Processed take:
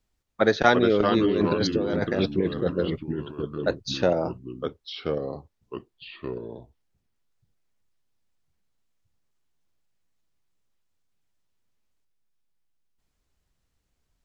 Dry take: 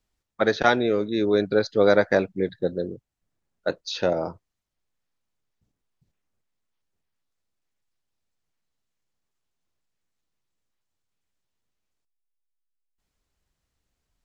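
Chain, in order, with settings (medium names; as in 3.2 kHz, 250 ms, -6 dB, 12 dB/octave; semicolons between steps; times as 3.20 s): bass shelf 350 Hz +3 dB; 1.19–2.66 s: compressor with a negative ratio -25 dBFS, ratio -1; ever faster or slower copies 270 ms, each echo -3 st, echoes 2, each echo -6 dB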